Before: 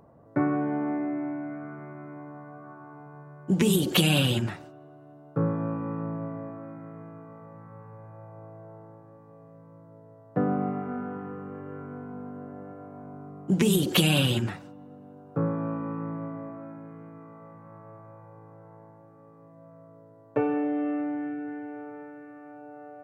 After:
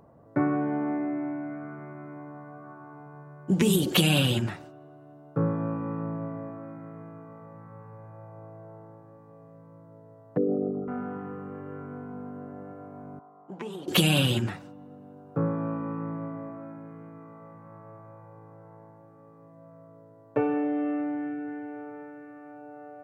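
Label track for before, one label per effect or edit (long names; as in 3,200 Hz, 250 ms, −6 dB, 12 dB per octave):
10.370000	10.880000	spectral envelope exaggerated exponent 3
13.190000	13.880000	resonant band-pass 900 Hz, Q 2.1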